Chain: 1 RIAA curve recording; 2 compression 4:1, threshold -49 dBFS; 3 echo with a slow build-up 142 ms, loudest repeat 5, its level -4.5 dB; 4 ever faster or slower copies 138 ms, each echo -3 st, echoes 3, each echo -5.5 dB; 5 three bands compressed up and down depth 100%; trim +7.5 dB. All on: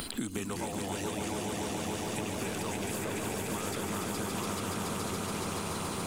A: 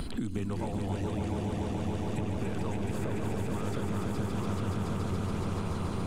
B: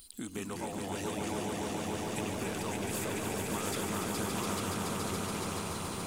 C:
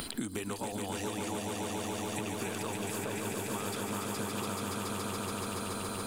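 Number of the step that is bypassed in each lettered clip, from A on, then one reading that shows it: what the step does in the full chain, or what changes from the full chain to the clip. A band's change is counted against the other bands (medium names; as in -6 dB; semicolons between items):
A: 1, 125 Hz band +11.5 dB; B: 5, momentary loudness spread change +3 LU; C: 4, loudness change -1.5 LU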